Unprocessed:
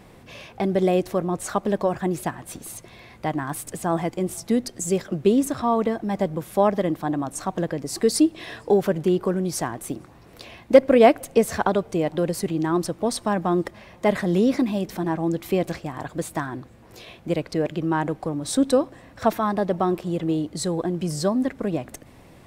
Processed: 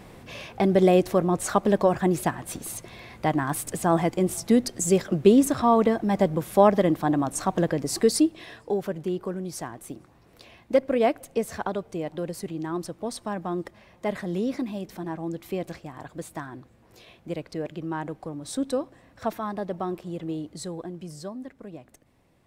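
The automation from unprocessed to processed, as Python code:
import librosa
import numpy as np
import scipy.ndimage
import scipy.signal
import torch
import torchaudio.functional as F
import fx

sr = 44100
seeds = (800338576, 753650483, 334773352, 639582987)

y = fx.gain(x, sr, db=fx.line((7.9, 2.0), (8.59, -8.0), (20.52, -8.0), (21.44, -15.5)))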